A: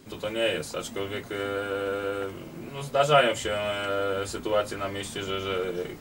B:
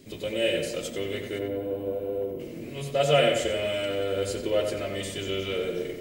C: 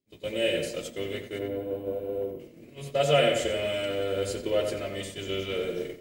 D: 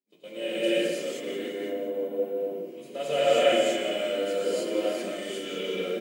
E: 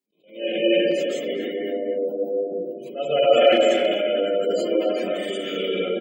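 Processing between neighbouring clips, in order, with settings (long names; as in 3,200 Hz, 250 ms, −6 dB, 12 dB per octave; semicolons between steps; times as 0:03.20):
gain on a spectral selection 0:01.39–0:02.40, 1,100–11,000 Hz −17 dB; flat-topped bell 1,100 Hz −11 dB 1.2 octaves; tape delay 91 ms, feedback 58%, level −4.5 dB, low-pass 2,900 Hz
downward expander −29 dBFS; level −1 dB
Chebyshev high-pass filter 180 Hz, order 4; repeating echo 176 ms, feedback 55%, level −12.5 dB; convolution reverb, pre-delay 3 ms, DRR −9.5 dB; level −9 dB
gate on every frequency bin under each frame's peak −25 dB strong; far-end echo of a speakerphone 250 ms, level −8 dB; level that may rise only so fast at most 160 dB per second; level +6 dB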